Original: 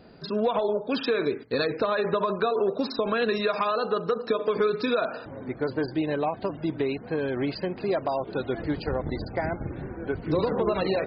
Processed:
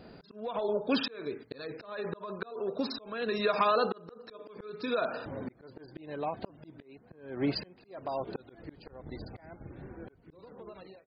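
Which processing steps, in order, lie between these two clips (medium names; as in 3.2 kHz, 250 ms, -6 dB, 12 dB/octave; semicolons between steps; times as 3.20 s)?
fade out at the end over 2.80 s; slow attack 661 ms; 6.82–7.98 s: three bands expanded up and down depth 100%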